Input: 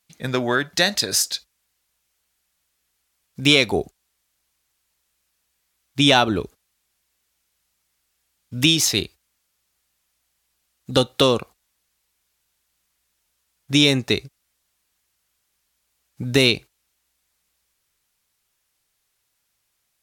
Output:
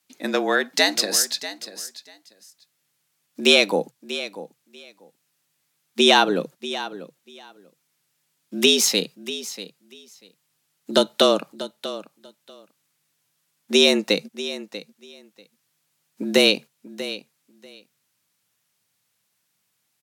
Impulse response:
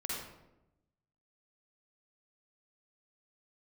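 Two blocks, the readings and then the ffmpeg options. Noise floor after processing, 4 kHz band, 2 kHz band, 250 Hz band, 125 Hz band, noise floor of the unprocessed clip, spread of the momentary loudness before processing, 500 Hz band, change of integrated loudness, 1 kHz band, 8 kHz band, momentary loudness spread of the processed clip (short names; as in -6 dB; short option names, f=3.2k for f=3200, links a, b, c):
-73 dBFS, +0.5 dB, 0.0 dB, -2.0 dB, -15.5 dB, -73 dBFS, 12 LU, +2.5 dB, -1.5 dB, +1.0 dB, +0.5 dB, 20 LU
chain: -af "aecho=1:1:640|1280:0.2|0.0319,afreqshift=95"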